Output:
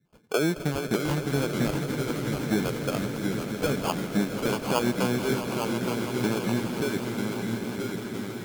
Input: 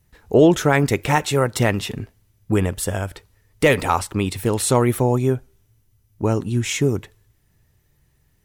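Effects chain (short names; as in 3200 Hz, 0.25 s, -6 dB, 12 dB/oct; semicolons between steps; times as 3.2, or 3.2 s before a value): elliptic band-pass 160–2100 Hz; low shelf 380 Hz +5 dB; compressor, threshold -16 dBFS, peak gain reduction 10 dB; harmonic tremolo 4.3 Hz, depth 100%, crossover 410 Hz; sample-and-hold 23×; on a send: swelling echo 0.165 s, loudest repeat 5, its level -13.5 dB; on the sum: echoes that change speed 0.574 s, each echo -1 st, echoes 3, each echo -6 dB; core saturation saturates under 300 Hz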